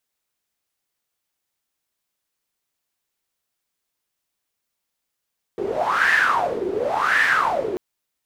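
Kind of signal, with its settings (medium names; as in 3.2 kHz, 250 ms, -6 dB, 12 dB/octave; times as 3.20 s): wind-like swept noise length 2.19 s, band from 380 Hz, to 1.8 kHz, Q 8.9, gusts 2, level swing 7.5 dB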